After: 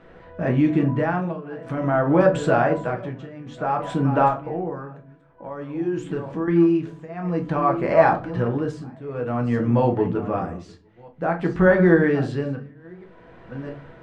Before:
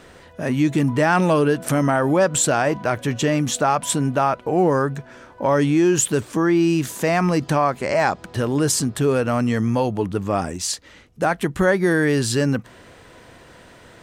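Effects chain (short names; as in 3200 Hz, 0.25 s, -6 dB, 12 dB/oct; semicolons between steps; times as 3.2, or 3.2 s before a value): reverse delay 0.652 s, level -14 dB; LPF 2000 Hz 12 dB/oct; 4.28–6.48 compressor 2.5:1, threshold -30 dBFS, peak gain reduction 11.5 dB; tremolo triangle 0.53 Hz, depth 95%; reverb RT60 0.35 s, pre-delay 6 ms, DRR 2.5 dB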